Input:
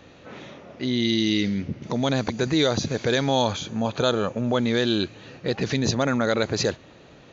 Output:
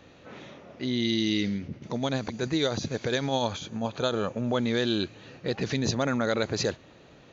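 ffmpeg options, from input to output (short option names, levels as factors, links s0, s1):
-filter_complex "[0:a]asettb=1/sr,asplit=3[s0][s1][s2];[s0]atrim=end=1.554[s3];[s1]atrim=start=1.55:end=4.16,asetpts=PTS-STARTPTS,afade=t=in:d=0.004:c=qsin,afade=t=out:st=2.606:d=0.004:c=qsin,tremolo=f=10:d=0.38[s4];[s2]atrim=start=4.156[s5];[s3][s4]acrossfade=d=0.004:c1=hsin:c2=qsin[s6];[s6][s5]acrossfade=d=0.004:c1=qsin:c2=hsin,volume=0.631"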